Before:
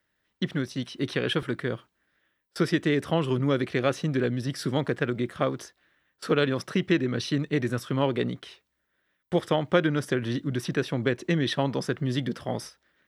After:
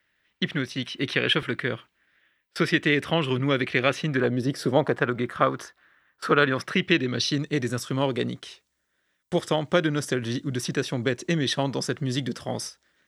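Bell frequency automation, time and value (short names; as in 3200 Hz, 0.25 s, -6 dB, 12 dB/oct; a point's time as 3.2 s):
bell +10 dB 1.4 oct
4.09 s 2400 Hz
4.41 s 340 Hz
5.17 s 1300 Hz
6.41 s 1300 Hz
7.5 s 7100 Hz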